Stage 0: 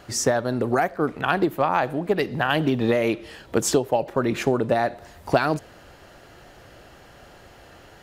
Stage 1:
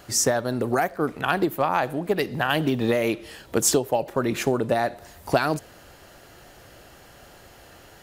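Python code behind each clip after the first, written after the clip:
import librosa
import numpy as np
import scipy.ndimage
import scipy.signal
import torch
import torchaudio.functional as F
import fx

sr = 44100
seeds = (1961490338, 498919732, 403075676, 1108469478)

y = fx.high_shelf(x, sr, hz=6900.0, db=11.5)
y = y * 10.0 ** (-1.5 / 20.0)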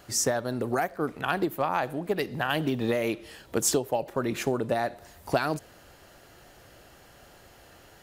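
y = fx.end_taper(x, sr, db_per_s=520.0)
y = y * 10.0 ** (-4.5 / 20.0)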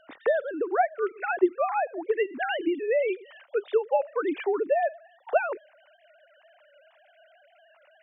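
y = fx.sine_speech(x, sr)
y = y * 10.0 ** (1.5 / 20.0)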